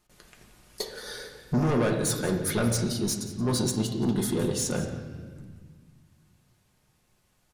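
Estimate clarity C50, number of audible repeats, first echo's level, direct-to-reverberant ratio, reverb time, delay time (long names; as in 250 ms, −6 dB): 6.5 dB, 1, −15.0 dB, 1.5 dB, 1.6 s, 177 ms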